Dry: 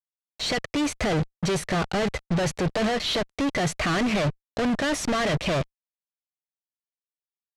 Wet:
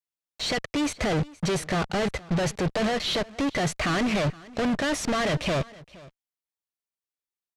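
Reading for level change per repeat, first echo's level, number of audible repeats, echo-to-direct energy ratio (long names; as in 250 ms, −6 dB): repeats not evenly spaced, −21.5 dB, 1, −21.5 dB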